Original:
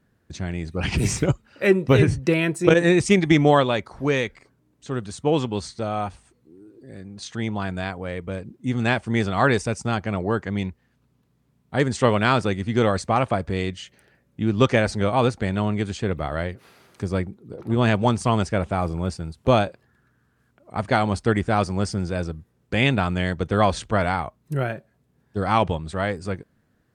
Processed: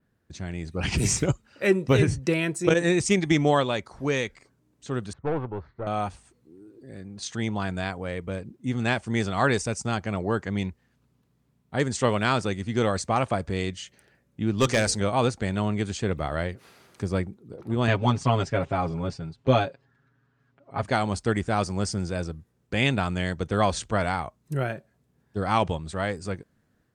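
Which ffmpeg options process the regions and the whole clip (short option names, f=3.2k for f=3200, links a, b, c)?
-filter_complex "[0:a]asettb=1/sr,asplit=3[a][b][c];[a]atrim=end=5.134[d];[b]atrim=start=5.13:end=5.87,asetpts=PTS-STARTPTS,afade=t=in:d=0.004:c=qsin,afade=t=out:st=0.736:d=0.004:c=qsin,lowpass=f=1.7k:w=0.5412,lowpass=f=1.7k:w=1.3066,equalizer=f=220:t=o:w=0.57:g=-10,aeval=exprs='(tanh(10*val(0)+0.45)-tanh(0.45))/10':c=same[e];[c]atrim=start=5.866[f];[d][e]acrossfade=d=0.004:c1=hsin:c2=qsin[g];[g][f]acrossfade=d=0.004:c1=qsin:c2=hsin,asettb=1/sr,asplit=3[h][i][j];[h]atrim=end=14.584[k];[i]atrim=start=14.58:end=15,asetpts=PTS-STARTPTS,afade=t=in:d=0.004:c=qsin,afade=t=out:st=0.416:d=0.004:c=qsin,highshelf=f=3.7k:g=10,bandreject=f=60:t=h:w=6,bandreject=f=120:t=h:w=6,bandreject=f=180:t=h:w=6,bandreject=f=240:t=h:w=6,bandreject=f=300:t=h:w=6,bandreject=f=360:t=h:w=6,bandreject=f=420:t=h:w=6,bandreject=f=480:t=h:w=6,aeval=exprs='clip(val(0),-1,0.282)':c=same[l];[j]atrim=start=14.996[m];[k][l]acrossfade=d=0.004:c1=hsin:c2=qsin[n];[n][m]acrossfade=d=0.004:c1=qsin:c2=hsin,asettb=1/sr,asplit=3[o][p][q];[o]atrim=end=17.874[r];[p]atrim=start=17.87:end=20.83,asetpts=PTS-STARTPTS,afade=t=in:d=0.004:c=qsin,afade=t=out:st=2.956:d=0.004:c=qsin,lowpass=4.2k,aecho=1:1:7.3:0.91,atrim=end_sample=130536[s];[q]atrim=start=20.826[t];[r][s]acrossfade=d=0.004:c1=hsin:c2=qsin[u];[u][t]acrossfade=d=0.004:c1=qsin:c2=hsin,adynamicequalizer=threshold=0.00501:dfrequency=7000:dqfactor=1:tfrequency=7000:tqfactor=1:attack=5:release=100:ratio=0.375:range=3.5:mode=boostabove:tftype=bell,dynaudnorm=f=440:g=3:m=4.5dB,volume=-6dB"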